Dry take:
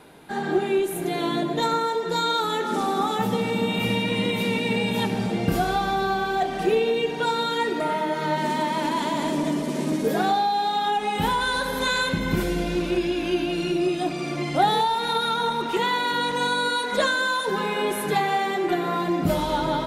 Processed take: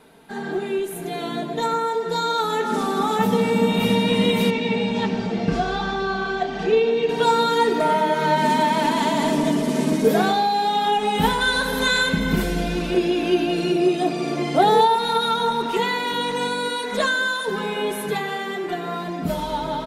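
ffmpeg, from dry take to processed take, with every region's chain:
ffmpeg -i in.wav -filter_complex "[0:a]asettb=1/sr,asplit=3[link_01][link_02][link_03];[link_01]atrim=end=4.504[link_04];[link_02]atrim=start=4.5:end=7.09,asetpts=PTS-STARTPTS,afade=type=in:duration=0.004:curve=qsin,afade=type=out:start_time=2.586:duration=0.004:curve=qsin,lowpass=frequency=6400:width=0.5412,lowpass=frequency=6400:width=1.3066,flanger=delay=2.2:depth=6.3:regen=-69:speed=1.3:shape=sinusoidal[link_05];[link_03]atrim=start=7.086[link_06];[link_04][link_05]acrossfade=duration=0.004:curve1=hsin:curve2=qsin[link_07];[link_07][link_06]acrossfade=duration=0.004:curve1=qsin:curve2=hsin,asettb=1/sr,asplit=3[link_08][link_09][link_10];[link_08]atrim=end=12.944[link_11];[link_09]atrim=start=12.94:end=14.96,asetpts=PTS-STARTPTS,afade=type=in:duration=0.004:curve=qsin,afade=type=out:start_time=2.016:duration=0.004:curve=qsin,highpass=68,equalizer=frequency=410:width=1.3:gain=7.5[link_12];[link_10]atrim=start=14.956[link_13];[link_11][link_12]acrossfade=duration=0.004:curve1=hsin:curve2=qsin[link_14];[link_14][link_13]acrossfade=duration=0.004:curve1=qsin:curve2=hsin,aecho=1:1:4.5:0.48,dynaudnorm=framelen=270:gausssize=21:maxgain=9dB,volume=-3dB" out.wav

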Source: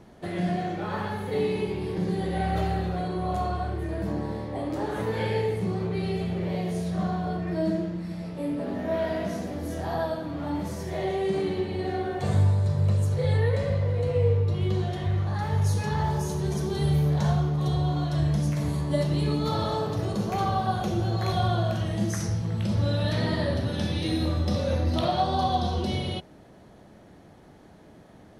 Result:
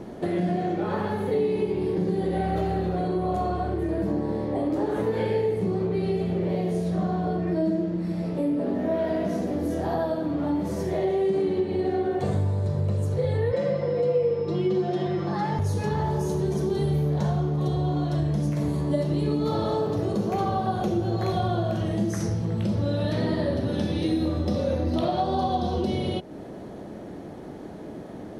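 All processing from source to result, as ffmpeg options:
ffmpeg -i in.wav -filter_complex "[0:a]asettb=1/sr,asplit=3[link_01][link_02][link_03];[link_01]atrim=end=13.524[link_04];[link_02]atrim=start=13.52:end=15.59,asetpts=PTS-STARTPTS,afade=type=in:duration=0.004:curve=qsin,afade=type=out:start_time=2.066:duration=0.004:curve=qsin,aecho=1:1:5.8:0.89,atrim=end_sample=91287,aeval=exprs='val(0)+0.00224*sin(2*PI*5200*n/s)':channel_layout=same,highpass=160,lowpass=7100[link_05];[link_03]atrim=start=15.586[link_06];[link_04][link_05]acrossfade=duration=0.004:curve1=hsin:curve2=qsin[link_07];[link_07][link_06]acrossfade=duration=0.004:curve1=qsin:curve2=hsin,equalizer=frequency=350:width=0.6:gain=10,acompressor=threshold=-33dB:ratio=2.5,volume=5.5dB" out.wav

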